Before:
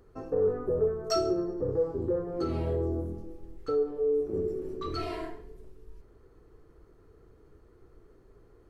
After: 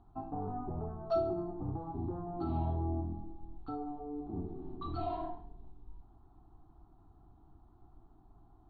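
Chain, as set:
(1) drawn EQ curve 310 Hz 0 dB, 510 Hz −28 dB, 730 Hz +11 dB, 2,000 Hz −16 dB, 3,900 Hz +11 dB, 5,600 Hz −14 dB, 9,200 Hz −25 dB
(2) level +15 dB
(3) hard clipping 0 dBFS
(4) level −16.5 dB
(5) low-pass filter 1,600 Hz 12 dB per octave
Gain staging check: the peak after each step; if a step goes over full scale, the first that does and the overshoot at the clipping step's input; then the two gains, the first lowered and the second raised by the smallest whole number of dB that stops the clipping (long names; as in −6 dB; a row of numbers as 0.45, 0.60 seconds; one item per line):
−18.0, −3.0, −3.0, −19.5, −21.5 dBFS
no step passes full scale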